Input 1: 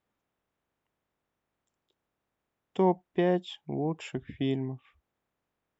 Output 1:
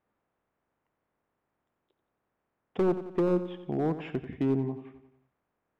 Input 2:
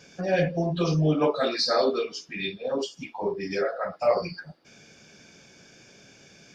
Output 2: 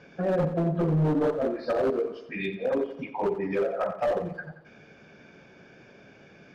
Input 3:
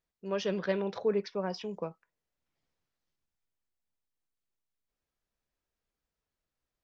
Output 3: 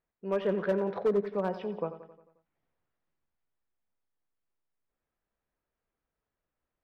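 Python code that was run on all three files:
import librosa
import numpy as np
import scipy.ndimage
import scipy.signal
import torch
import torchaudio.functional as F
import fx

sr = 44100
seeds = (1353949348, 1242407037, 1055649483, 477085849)

p1 = scipy.signal.sosfilt(scipy.signal.butter(2, 1900.0, 'lowpass', fs=sr, output='sos'), x)
p2 = fx.low_shelf(p1, sr, hz=190.0, db=-4.0)
p3 = (np.mod(10.0 ** (15.0 / 20.0) * p2 + 1.0, 2.0) - 1.0) / 10.0 ** (15.0 / 20.0)
p4 = p2 + (p3 * librosa.db_to_amplitude(-5.0))
p5 = fx.env_lowpass_down(p4, sr, base_hz=500.0, full_db=-19.5)
p6 = np.clip(p5, -10.0 ** (-21.0 / 20.0), 10.0 ** (-21.0 / 20.0))
y = p6 + fx.echo_feedback(p6, sr, ms=89, feedback_pct=55, wet_db=-12.5, dry=0)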